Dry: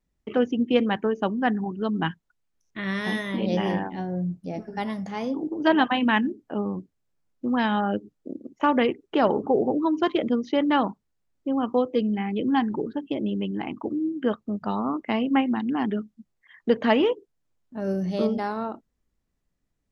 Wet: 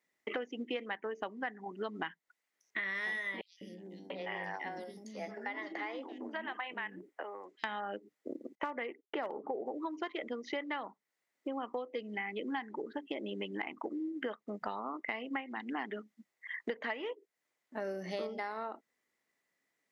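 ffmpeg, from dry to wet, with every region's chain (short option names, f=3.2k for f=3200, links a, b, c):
-filter_complex "[0:a]asettb=1/sr,asplit=3[a][b][c];[a]atrim=end=3.414[d];[b]atrim=start=3.41:end=7.64,asetpts=PTS-STARTPTS,afade=t=in:d=0.004:c=qsin,afade=t=out:st=4.226:d=0.004:c=qsin,acompressor=threshold=-32dB:ratio=12:attack=3.2:release=140:knee=1:detection=peak,acrossover=split=350|4300[e][f][g];[e]adelay=200[h];[f]adelay=690[i];[h][i][g]amix=inputs=3:normalize=0,atrim=end_sample=186543[j];[c]atrim=start=7.636[k];[d][j]acrossfade=d=0.004:c1=hsin:c2=qsin[l];[l][k]acrossfade=d=0.004:c1=qsin:c2=hsin,asettb=1/sr,asplit=3[m][n][o];[m]atrim=end=8.554[p];[n]atrim=start=8.55:end=9.66,asetpts=PTS-STARTPTS,afade=t=in:d=0.004:c=qsin,afade=t=out:st=1.106:d=0.004:c=qsin,highshelf=f=3.2k:g=-11,agate=range=-33dB:threshold=-45dB:ratio=3:release=100:detection=peak,asoftclip=type=hard:threshold=-11dB[q];[o]atrim=start=9.656[r];[p][q]acrossfade=d=0.004:c1=hsin:c2=qsin[s];[s][r]acrossfade=d=0.004:c1=qsin:c2=hsin,highpass=440,equalizer=f=2k:w=4.7:g=12.5,acompressor=threshold=-37dB:ratio=10,volume=2dB"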